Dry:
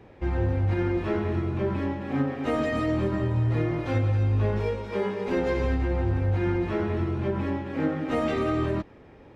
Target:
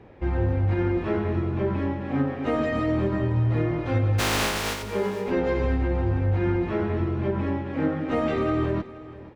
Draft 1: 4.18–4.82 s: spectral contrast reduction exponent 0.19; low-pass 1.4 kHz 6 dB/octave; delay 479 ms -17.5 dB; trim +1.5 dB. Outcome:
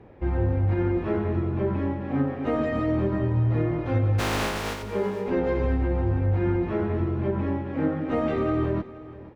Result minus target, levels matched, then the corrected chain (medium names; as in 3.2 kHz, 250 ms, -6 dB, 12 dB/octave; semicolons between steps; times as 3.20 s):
4 kHz band -5.0 dB
4.18–4.82 s: spectral contrast reduction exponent 0.19; low-pass 3.4 kHz 6 dB/octave; delay 479 ms -17.5 dB; trim +1.5 dB